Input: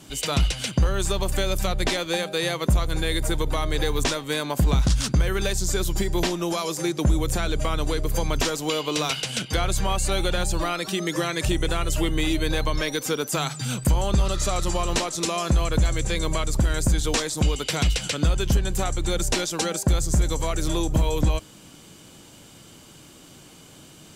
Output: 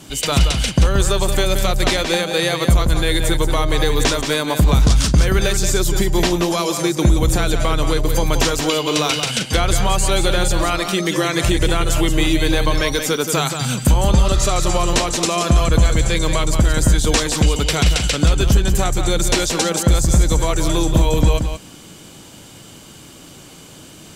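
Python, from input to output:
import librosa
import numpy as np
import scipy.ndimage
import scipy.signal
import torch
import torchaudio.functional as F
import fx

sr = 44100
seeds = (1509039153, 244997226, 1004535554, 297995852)

y = x + 10.0 ** (-7.5 / 20.0) * np.pad(x, (int(177 * sr / 1000.0), 0))[:len(x)]
y = y * 10.0 ** (6.5 / 20.0)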